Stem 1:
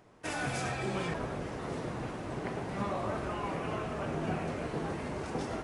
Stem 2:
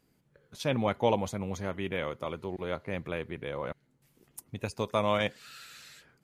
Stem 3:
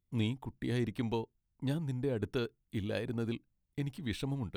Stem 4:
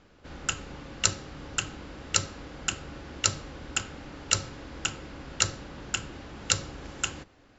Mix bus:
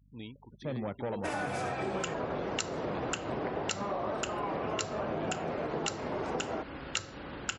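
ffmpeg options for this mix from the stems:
-filter_complex "[0:a]equalizer=f=640:t=o:w=2.9:g=9.5,acontrast=36,adelay=1000,volume=0.531[s0];[1:a]tiltshelf=f=1500:g=7.5,asoftclip=type=tanh:threshold=0.133,volume=0.335[s1];[2:a]lowshelf=f=130:g=-10.5,aeval=exprs='val(0)+0.00316*(sin(2*PI*50*n/s)+sin(2*PI*2*50*n/s)/2+sin(2*PI*3*50*n/s)/3+sin(2*PI*4*50*n/s)/4+sin(2*PI*5*50*n/s)/5)':c=same,volume=0.376[s2];[3:a]bass=f=250:g=-4,treble=f=4000:g=-4,adelay=1550,volume=1.33[s3];[s0][s1][s2][s3]amix=inputs=4:normalize=0,afftfilt=real='re*gte(hypot(re,im),0.00282)':imag='im*gte(hypot(re,im),0.00282)':win_size=1024:overlap=0.75,highpass=f=66:p=1,acompressor=threshold=0.0282:ratio=6"

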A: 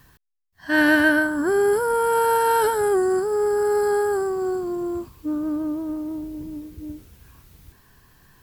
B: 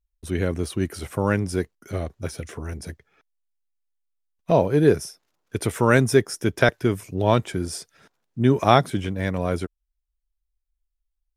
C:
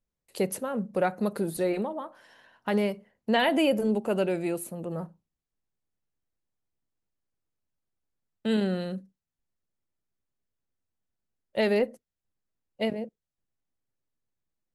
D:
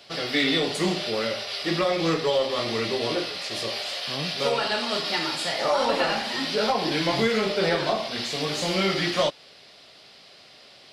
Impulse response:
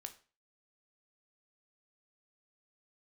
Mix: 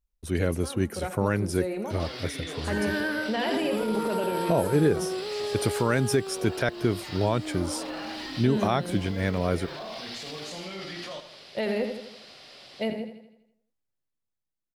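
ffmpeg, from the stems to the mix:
-filter_complex "[0:a]adelay=2000,volume=0.282[s0];[1:a]volume=0.841,asplit=2[s1][s2];[2:a]dynaudnorm=f=490:g=7:m=3.16,volume=0.316,asplit=2[s3][s4];[s4]volume=0.299[s5];[3:a]acompressor=threshold=0.0562:ratio=6,alimiter=level_in=2.24:limit=0.0631:level=0:latency=1:release=26,volume=0.447,adelay=1900,volume=1.12,asplit=2[s6][s7];[s7]volume=0.299[s8];[s2]apad=whole_len=565529[s9];[s6][s9]sidechaincompress=threshold=0.0794:ratio=8:attack=16:release=519[s10];[s0][s3][s10]amix=inputs=3:normalize=0,alimiter=limit=0.0944:level=0:latency=1:release=10,volume=1[s11];[s5][s8]amix=inputs=2:normalize=0,aecho=0:1:82|164|246|328|410|492|574|656:1|0.52|0.27|0.141|0.0731|0.038|0.0198|0.0103[s12];[s1][s11][s12]amix=inputs=3:normalize=0,alimiter=limit=0.251:level=0:latency=1:release=155"

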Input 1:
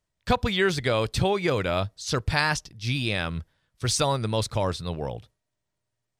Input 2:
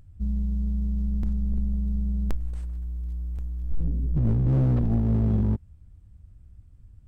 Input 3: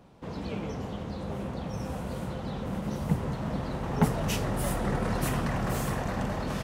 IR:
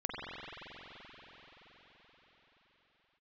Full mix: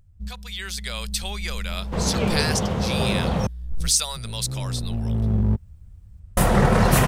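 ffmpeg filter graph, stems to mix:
-filter_complex "[0:a]aderivative,volume=0.794,asplit=2[s0][s1];[1:a]volume=0.562[s2];[2:a]adelay=1700,volume=1.33,asplit=3[s3][s4][s5];[s3]atrim=end=3.47,asetpts=PTS-STARTPTS,afade=t=out:st=3.466:d=0.004:c=hsin[s6];[s4]atrim=start=3.47:end=6.37,asetpts=PTS-STARTPTS,volume=0[s7];[s5]atrim=start=6.37,asetpts=PTS-STARTPTS,afade=t=in:d=0.004:c=hsin[s8];[s6][s7][s8]concat=n=3:v=0:a=1[s9];[s1]apad=whole_len=311989[s10];[s2][s10]sidechaincompress=threshold=0.00447:ratio=8:attack=38:release=1070[s11];[s0][s11][s9]amix=inputs=3:normalize=0,equalizer=f=290:t=o:w=0.38:g=-9,dynaudnorm=f=110:g=13:m=3.35"

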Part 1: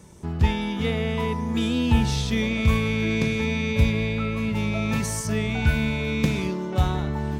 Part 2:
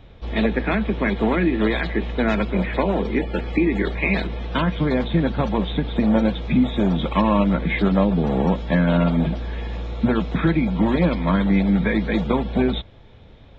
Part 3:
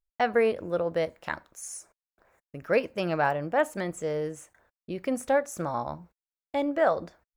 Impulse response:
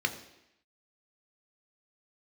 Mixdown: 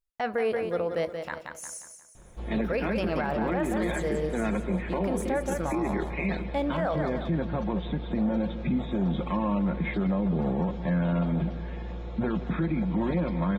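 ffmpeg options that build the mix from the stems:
-filter_complex "[1:a]equalizer=f=3900:w=0.61:g=-7,aecho=1:1:5.6:0.34,adelay=2150,volume=0.473,asplit=2[s0][s1];[s1]volume=0.15[s2];[2:a]volume=0.944,asplit=2[s3][s4];[s4]volume=0.398[s5];[s2][s5]amix=inputs=2:normalize=0,aecho=0:1:178|356|534|712|890|1068:1|0.4|0.16|0.064|0.0256|0.0102[s6];[s0][s3][s6]amix=inputs=3:normalize=0,alimiter=limit=0.106:level=0:latency=1:release=24"

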